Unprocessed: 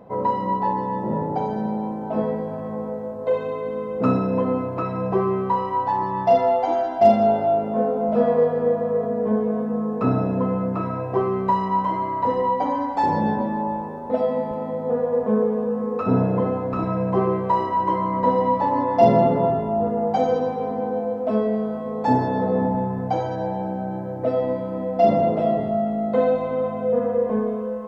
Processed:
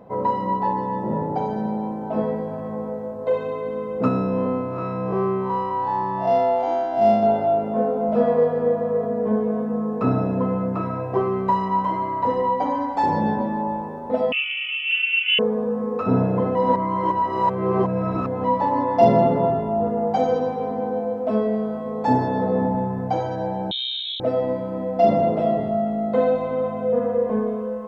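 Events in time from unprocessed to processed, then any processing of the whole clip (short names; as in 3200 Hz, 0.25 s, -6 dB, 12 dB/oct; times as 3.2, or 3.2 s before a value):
4.08–7.23 time blur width 0.122 s
14.32–15.39 inverted band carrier 3200 Hz
16.55–18.44 reverse
23.71–24.2 inverted band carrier 3900 Hz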